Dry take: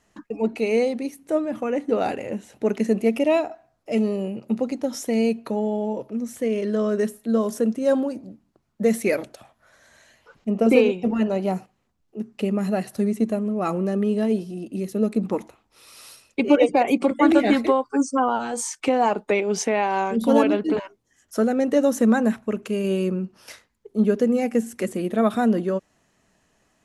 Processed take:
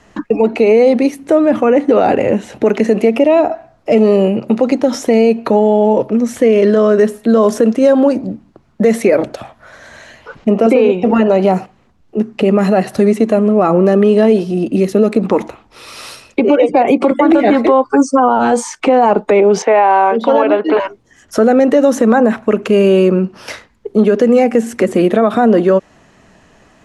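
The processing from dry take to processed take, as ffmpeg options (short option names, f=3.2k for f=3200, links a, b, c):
-filter_complex "[0:a]asettb=1/sr,asplit=3[a][b][c];[a]atrim=end=19.624[d];[b]atrim=start=19.62:end=20.8,asetpts=PTS-STARTPTS,afade=t=in:d=0.004:c=qsin,afade=t=out:st=1.176:d=0.004:c=qsin,highpass=570,lowpass=3.6k[e];[c]atrim=start=20.796[f];[d][e]acrossfade=d=0.004:c1=hsin:c2=qsin[g];[g][f]acrossfade=d=0.004:c1=qsin:c2=hsin,aemphasis=mode=reproduction:type=50fm,acrossover=split=340|1300[h][i][j];[h]acompressor=threshold=-34dB:ratio=4[k];[i]acompressor=threshold=-23dB:ratio=4[l];[j]acompressor=threshold=-43dB:ratio=4[m];[k][l][m]amix=inputs=3:normalize=0,alimiter=level_in=19.5dB:limit=-1dB:release=50:level=0:latency=1,volume=-1dB"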